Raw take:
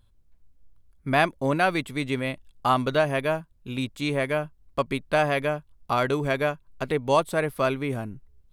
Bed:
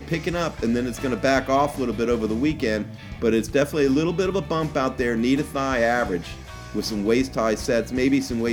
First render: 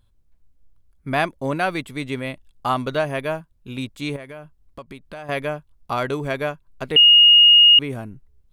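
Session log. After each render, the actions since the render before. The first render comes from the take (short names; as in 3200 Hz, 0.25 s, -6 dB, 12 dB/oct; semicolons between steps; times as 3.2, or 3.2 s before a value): 4.16–5.29 compressor 3:1, threshold -37 dBFS; 6.96–7.79 bleep 2860 Hz -7.5 dBFS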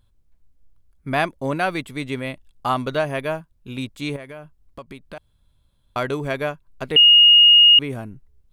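5.18–5.96 room tone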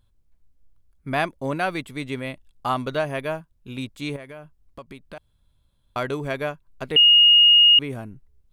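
gain -2.5 dB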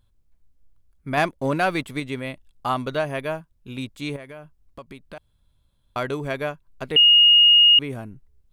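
1.17–2 sample leveller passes 1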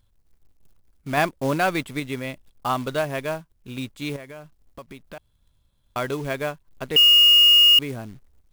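short-mantissa float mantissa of 2-bit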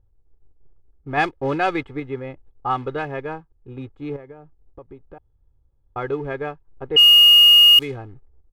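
low-pass opened by the level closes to 700 Hz, open at -11 dBFS; comb 2.4 ms, depth 72%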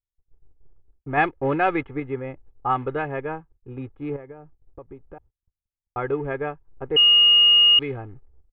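LPF 2700 Hz 24 dB/oct; gate -52 dBFS, range -34 dB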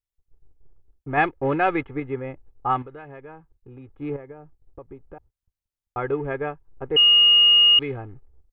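2.82–3.89 compressor 3:1, threshold -42 dBFS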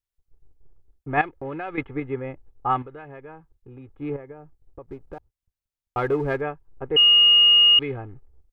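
1.21–1.78 compressor 3:1, threshold -32 dBFS; 4.84–6.41 sample leveller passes 1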